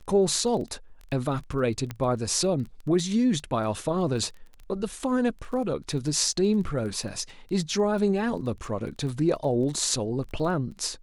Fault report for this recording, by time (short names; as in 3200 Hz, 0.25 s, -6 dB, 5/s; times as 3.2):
crackle 14/s -35 dBFS
1.91 pop -18 dBFS